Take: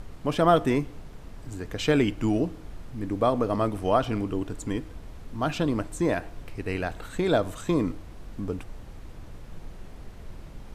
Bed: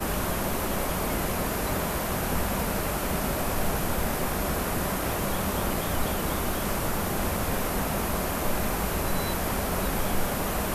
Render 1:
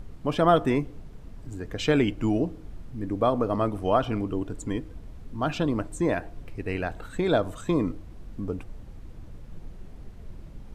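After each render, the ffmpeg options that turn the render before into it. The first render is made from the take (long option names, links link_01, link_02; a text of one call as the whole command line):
ffmpeg -i in.wav -af "afftdn=noise_reduction=7:noise_floor=-44" out.wav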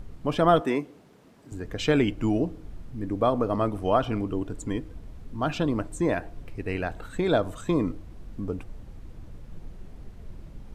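ffmpeg -i in.wav -filter_complex "[0:a]asettb=1/sr,asplit=3[link_01][link_02][link_03];[link_01]atrim=end=0.614[link_04];[link_02]atrim=start=0.61:end=1.52,asetpts=PTS-STARTPTS,afade=type=in:duration=0.004:curve=qsin,afade=type=out:start_time=0.906:duration=0.004:curve=qsin,highpass=250[link_05];[link_03]atrim=start=1.516[link_06];[link_04][link_05]acrossfade=duration=0.004:curve1=hsin:curve2=qsin[link_07];[link_07][link_06]acrossfade=duration=0.004:curve1=qsin:curve2=hsin" out.wav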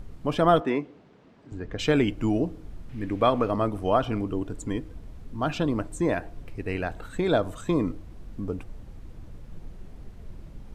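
ffmpeg -i in.wav -filter_complex "[0:a]asettb=1/sr,asplit=3[link_01][link_02][link_03];[link_01]atrim=end=0.604[link_04];[link_02]atrim=start=0.6:end=1.79,asetpts=PTS-STARTPTS,afade=type=in:duration=0.004:curve=qsin,afade=type=out:start_time=1.186:duration=0.004:curve=qsin,lowpass=4000[link_05];[link_03]atrim=start=1.786[link_06];[link_04][link_05]acrossfade=duration=0.004:curve1=hsin:curve2=qsin[link_07];[link_07][link_06]acrossfade=duration=0.004:curve1=qsin:curve2=hsin,asettb=1/sr,asplit=3[link_08][link_09][link_10];[link_08]atrim=end=2.894[link_11];[link_09]atrim=start=2.89:end=3.51,asetpts=PTS-STARTPTS,afade=type=in:duration=0.004:curve=qsin,afade=type=out:start_time=0.616:duration=0.004:curve=qsin,equalizer=frequency=2400:width_type=o:width=1.5:gain=11[link_12];[link_10]atrim=start=3.506[link_13];[link_11][link_12]acrossfade=duration=0.004:curve1=hsin:curve2=qsin[link_14];[link_14][link_13]acrossfade=duration=0.004:curve1=qsin:curve2=hsin" out.wav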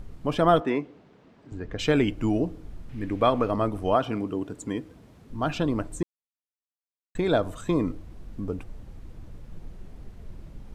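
ffmpeg -i in.wav -filter_complex "[0:a]asettb=1/sr,asplit=3[link_01][link_02][link_03];[link_01]atrim=end=3.954[link_04];[link_02]atrim=start=3.95:end=5.3,asetpts=PTS-STARTPTS,afade=type=in:duration=0.004:curve=qsin,afade=type=out:start_time=1.346:duration=0.004:curve=qsin,highpass=130[link_05];[link_03]atrim=start=5.296[link_06];[link_04][link_05]acrossfade=duration=0.004:curve1=hsin:curve2=qsin[link_07];[link_07][link_06]acrossfade=duration=0.004:curve1=qsin:curve2=hsin,asplit=3[link_08][link_09][link_10];[link_08]atrim=end=6.03,asetpts=PTS-STARTPTS,afade=type=out:start_time=6.026:duration=0.004:curve=hsin[link_11];[link_09]atrim=start=6.03:end=7.15,asetpts=PTS-STARTPTS,volume=0[link_12];[link_10]atrim=start=7.15,asetpts=PTS-STARTPTS,afade=type=in:duration=0.004:curve=hsin[link_13];[link_11][link_12][link_13]concat=n=3:v=0:a=1" out.wav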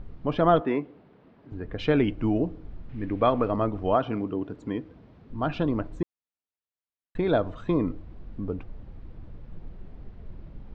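ffmpeg -i in.wav -af "lowpass=frequency=4700:width=0.5412,lowpass=frequency=4700:width=1.3066,highshelf=frequency=3000:gain=-8.5" out.wav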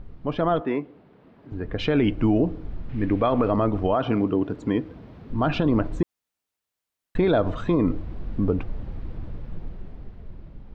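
ffmpeg -i in.wav -af "dynaudnorm=framelen=270:gausssize=11:maxgain=12dB,alimiter=limit=-12dB:level=0:latency=1:release=67" out.wav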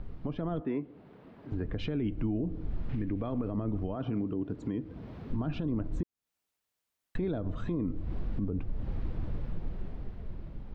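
ffmpeg -i in.wav -filter_complex "[0:a]acrossover=split=340[link_01][link_02];[link_02]acompressor=threshold=-45dB:ratio=2[link_03];[link_01][link_03]amix=inputs=2:normalize=0,alimiter=limit=-24dB:level=0:latency=1:release=216" out.wav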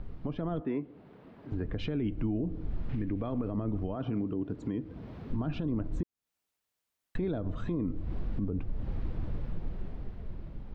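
ffmpeg -i in.wav -af anull out.wav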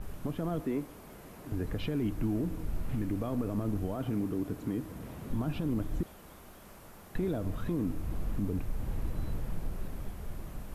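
ffmpeg -i in.wav -i bed.wav -filter_complex "[1:a]volume=-24dB[link_01];[0:a][link_01]amix=inputs=2:normalize=0" out.wav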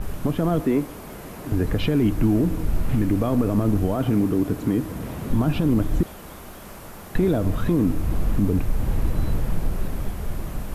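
ffmpeg -i in.wav -af "volume=12dB" out.wav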